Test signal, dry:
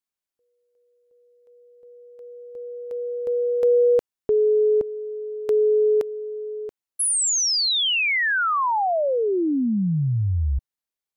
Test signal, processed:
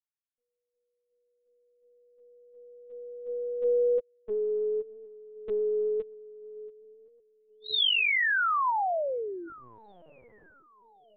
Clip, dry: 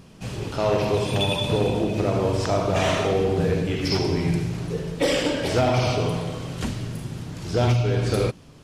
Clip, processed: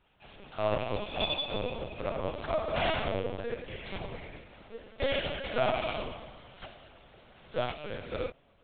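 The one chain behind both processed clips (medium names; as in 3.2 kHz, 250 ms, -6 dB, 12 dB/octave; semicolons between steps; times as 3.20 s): octave divider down 1 oct, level -3 dB; Bessel high-pass 580 Hz, order 6; filtered feedback delay 1068 ms, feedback 69%, low-pass 2 kHz, level -21.5 dB; LPC vocoder at 8 kHz pitch kept; upward expansion 1.5:1, over -38 dBFS; trim -2.5 dB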